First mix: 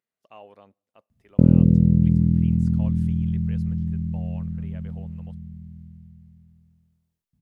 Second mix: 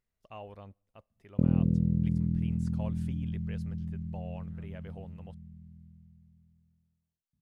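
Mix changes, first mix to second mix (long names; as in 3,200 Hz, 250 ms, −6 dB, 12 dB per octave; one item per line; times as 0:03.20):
speech: remove high-pass filter 240 Hz 12 dB per octave
background −10.5 dB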